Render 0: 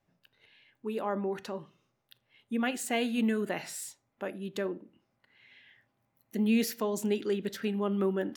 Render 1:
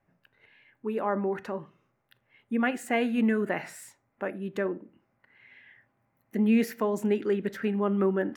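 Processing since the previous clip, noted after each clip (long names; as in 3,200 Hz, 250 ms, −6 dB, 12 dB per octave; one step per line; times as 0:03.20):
high shelf with overshoot 2,700 Hz −9.5 dB, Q 1.5
level +3.5 dB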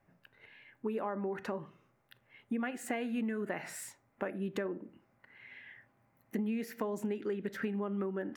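downward compressor 12 to 1, threshold −34 dBFS, peak gain reduction 16 dB
level +2 dB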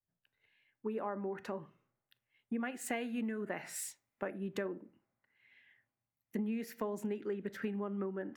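multiband upward and downward expander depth 70%
level −2.5 dB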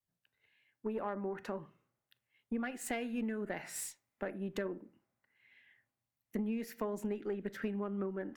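tube saturation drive 27 dB, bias 0.45
level +2 dB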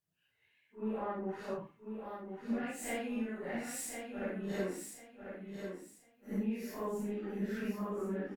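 random phases in long frames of 200 ms
repeating echo 1,045 ms, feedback 25%, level −6.5 dB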